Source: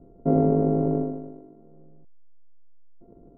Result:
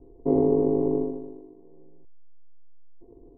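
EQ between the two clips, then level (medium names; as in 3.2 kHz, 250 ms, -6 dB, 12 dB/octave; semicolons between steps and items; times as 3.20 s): low-pass 1.4 kHz 12 dB/octave; static phaser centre 940 Hz, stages 8; +3.0 dB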